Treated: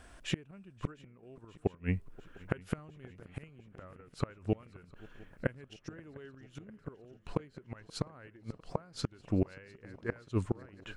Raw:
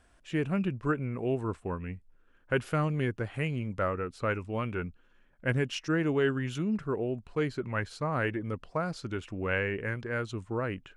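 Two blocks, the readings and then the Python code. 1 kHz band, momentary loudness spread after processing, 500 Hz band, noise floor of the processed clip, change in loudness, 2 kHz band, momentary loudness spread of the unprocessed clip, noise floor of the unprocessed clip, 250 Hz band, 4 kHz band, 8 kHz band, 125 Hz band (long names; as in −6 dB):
−12.5 dB, 19 LU, −10.0 dB, −62 dBFS, −7.5 dB, −13.5 dB, 7 LU, −63 dBFS, −7.0 dB, −5.0 dB, −3.0 dB, −6.5 dB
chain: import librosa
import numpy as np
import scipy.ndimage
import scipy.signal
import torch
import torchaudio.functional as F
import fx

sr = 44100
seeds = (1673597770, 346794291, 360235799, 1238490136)

p1 = fx.gate_flip(x, sr, shuts_db=-26.0, range_db=-32)
p2 = p1 + fx.echo_swing(p1, sr, ms=703, ratio=3, feedback_pct=68, wet_db=-22.5, dry=0)
y = F.gain(torch.from_numpy(p2), 8.5).numpy()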